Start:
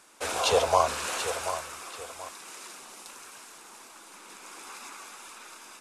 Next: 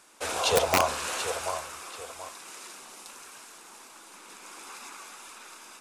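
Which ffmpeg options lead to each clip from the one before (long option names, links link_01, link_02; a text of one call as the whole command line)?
ffmpeg -i in.wav -af "bandreject=frequency=68.45:width_type=h:width=4,bandreject=frequency=136.9:width_type=h:width=4,bandreject=frequency=205.35:width_type=h:width=4,bandreject=frequency=273.8:width_type=h:width=4,bandreject=frequency=342.25:width_type=h:width=4,bandreject=frequency=410.7:width_type=h:width=4,bandreject=frequency=479.15:width_type=h:width=4,bandreject=frequency=547.6:width_type=h:width=4,bandreject=frequency=616.05:width_type=h:width=4,bandreject=frequency=684.5:width_type=h:width=4,bandreject=frequency=752.95:width_type=h:width=4,bandreject=frequency=821.4:width_type=h:width=4,bandreject=frequency=889.85:width_type=h:width=4,bandreject=frequency=958.3:width_type=h:width=4,bandreject=frequency=1026.75:width_type=h:width=4,bandreject=frequency=1095.2:width_type=h:width=4,bandreject=frequency=1163.65:width_type=h:width=4,bandreject=frequency=1232.1:width_type=h:width=4,bandreject=frequency=1300.55:width_type=h:width=4,bandreject=frequency=1369:width_type=h:width=4,bandreject=frequency=1437.45:width_type=h:width=4,bandreject=frequency=1505.9:width_type=h:width=4,bandreject=frequency=1574.35:width_type=h:width=4,bandreject=frequency=1642.8:width_type=h:width=4,bandreject=frequency=1711.25:width_type=h:width=4,bandreject=frequency=1779.7:width_type=h:width=4,bandreject=frequency=1848.15:width_type=h:width=4,bandreject=frequency=1916.6:width_type=h:width=4,bandreject=frequency=1985.05:width_type=h:width=4,bandreject=frequency=2053.5:width_type=h:width=4,bandreject=frequency=2121.95:width_type=h:width=4,bandreject=frequency=2190.4:width_type=h:width=4,bandreject=frequency=2258.85:width_type=h:width=4,bandreject=frequency=2327.3:width_type=h:width=4,bandreject=frequency=2395.75:width_type=h:width=4,aeval=exprs='(mod(4.22*val(0)+1,2)-1)/4.22':channel_layout=same" out.wav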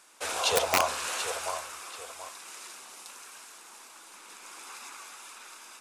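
ffmpeg -i in.wav -af "lowshelf=frequency=460:gain=-8.5" out.wav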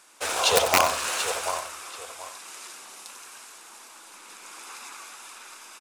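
ffmpeg -i in.wav -filter_complex "[0:a]asplit=2[link_01][link_02];[link_02]acrusher=bits=4:mix=0:aa=0.5,volume=-10dB[link_03];[link_01][link_03]amix=inputs=2:normalize=0,aecho=1:1:92:0.282,volume=2.5dB" out.wav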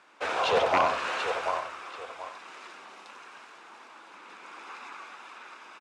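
ffmpeg -i in.wav -af "asoftclip=type=tanh:threshold=-18dB,highpass=110,lowpass=2500,volume=1.5dB" out.wav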